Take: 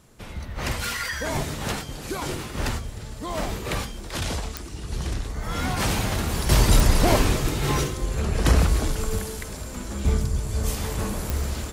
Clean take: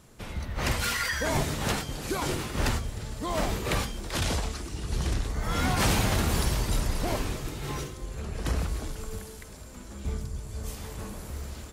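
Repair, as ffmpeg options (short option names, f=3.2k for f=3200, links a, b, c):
-af "adeclick=t=4,asetnsamples=n=441:p=0,asendcmd='6.49 volume volume -10.5dB',volume=0dB"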